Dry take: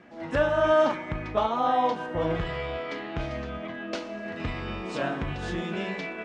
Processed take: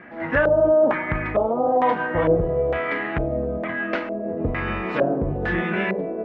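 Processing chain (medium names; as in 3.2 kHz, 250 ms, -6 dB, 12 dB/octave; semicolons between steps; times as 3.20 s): peak limiter -18.5 dBFS, peak gain reduction 6.5 dB; LFO low-pass square 1.1 Hz 520–1900 Hz; trim +6.5 dB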